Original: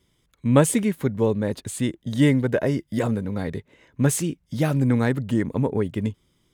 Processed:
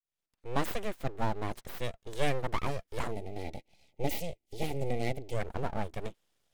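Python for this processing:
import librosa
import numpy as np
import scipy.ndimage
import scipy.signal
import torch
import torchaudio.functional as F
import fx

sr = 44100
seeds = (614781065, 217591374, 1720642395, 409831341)

y = fx.fade_in_head(x, sr, length_s=0.95)
y = scipy.signal.sosfilt(scipy.signal.butter(2, 190.0, 'highpass', fs=sr, output='sos'), y)
y = np.abs(y)
y = fx.spec_box(y, sr, start_s=3.12, length_s=2.22, low_hz=900.0, high_hz=1900.0, gain_db=-18)
y = y * 10.0 ** (-6.5 / 20.0)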